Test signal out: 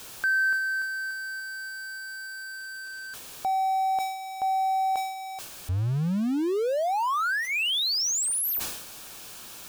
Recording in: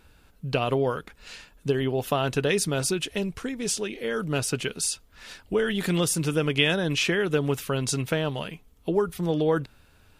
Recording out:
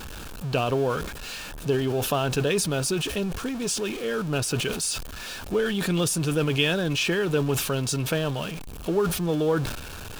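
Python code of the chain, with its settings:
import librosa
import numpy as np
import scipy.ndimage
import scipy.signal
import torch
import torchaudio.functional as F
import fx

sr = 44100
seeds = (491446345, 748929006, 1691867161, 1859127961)

y = x + 0.5 * 10.0 ** (-30.5 / 20.0) * np.sign(x)
y = fx.high_shelf(y, sr, hz=9000.0, db=-2.5)
y = fx.notch(y, sr, hz=2000.0, q=6.1)
y = fx.sustainer(y, sr, db_per_s=57.0)
y = F.gain(torch.from_numpy(y), -1.5).numpy()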